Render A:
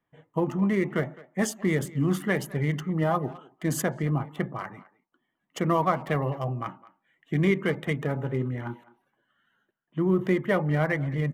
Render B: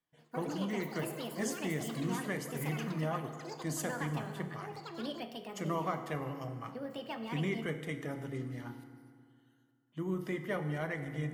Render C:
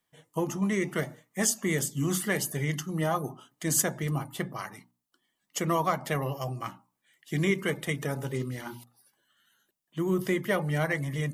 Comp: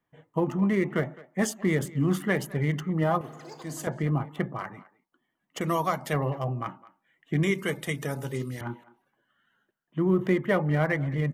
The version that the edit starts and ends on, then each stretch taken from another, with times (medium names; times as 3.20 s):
A
3.21–3.87 s: from B
5.61–6.13 s: from C
7.43–8.61 s: from C